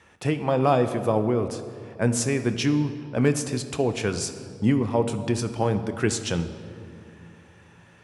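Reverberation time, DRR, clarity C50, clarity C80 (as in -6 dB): 2.7 s, 9.0 dB, 10.5 dB, 11.5 dB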